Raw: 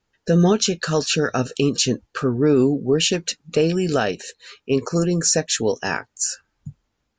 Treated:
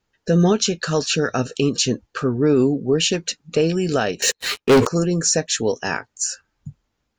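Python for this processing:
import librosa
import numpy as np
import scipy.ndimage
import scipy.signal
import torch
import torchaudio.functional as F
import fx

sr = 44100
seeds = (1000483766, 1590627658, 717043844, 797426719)

y = fx.leveller(x, sr, passes=5, at=(4.22, 4.87))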